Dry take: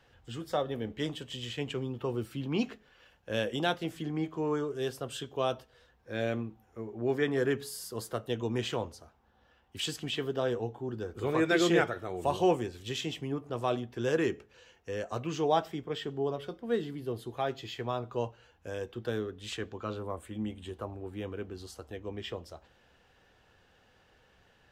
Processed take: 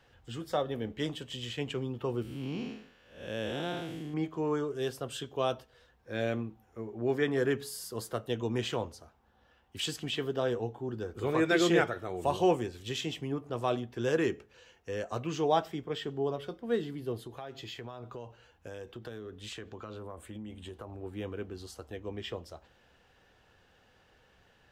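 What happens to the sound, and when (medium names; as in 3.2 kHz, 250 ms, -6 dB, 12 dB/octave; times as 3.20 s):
2.22–4.14 s: spectral blur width 246 ms
17.20–21.03 s: compression 10:1, threshold -38 dBFS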